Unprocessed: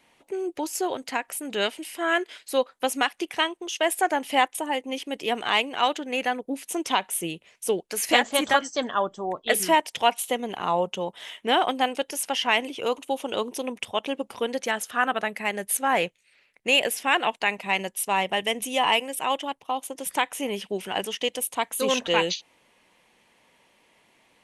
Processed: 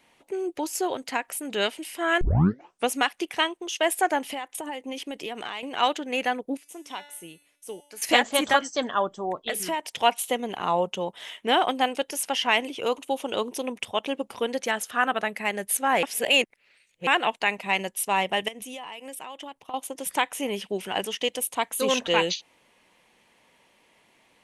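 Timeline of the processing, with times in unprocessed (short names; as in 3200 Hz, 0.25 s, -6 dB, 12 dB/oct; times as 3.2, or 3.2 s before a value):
2.21 tape start 0.69 s
4.26–5.63 compressor 10:1, threshold -29 dBFS
6.57–8.02 resonator 290 Hz, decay 0.77 s, mix 80%
9.49–9.98 compressor 2.5:1, threshold -28 dBFS
16.03–17.07 reverse
18.48–19.74 compressor 16:1, threshold -34 dBFS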